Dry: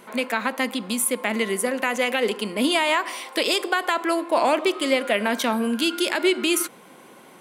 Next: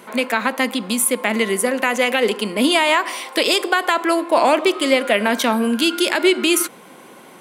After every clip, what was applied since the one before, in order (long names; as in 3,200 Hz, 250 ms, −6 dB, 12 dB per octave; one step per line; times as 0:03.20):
high-pass filter 92 Hz
level +5 dB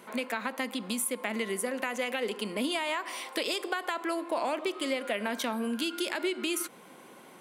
downward compressor 2.5 to 1, threshold −21 dBFS, peak gain reduction 8 dB
level −9 dB